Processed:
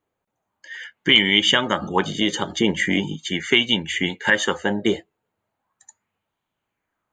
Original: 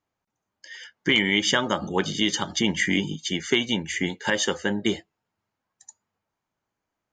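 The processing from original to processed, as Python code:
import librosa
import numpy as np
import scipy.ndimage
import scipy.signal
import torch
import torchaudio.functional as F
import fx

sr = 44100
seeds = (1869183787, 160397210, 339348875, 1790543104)

y = fx.peak_eq(x, sr, hz=5300.0, db=-13.0, octaves=0.38)
y = fx.bell_lfo(y, sr, hz=0.39, low_hz=420.0, high_hz=3300.0, db=8)
y = F.gain(torch.from_numpy(y), 2.0).numpy()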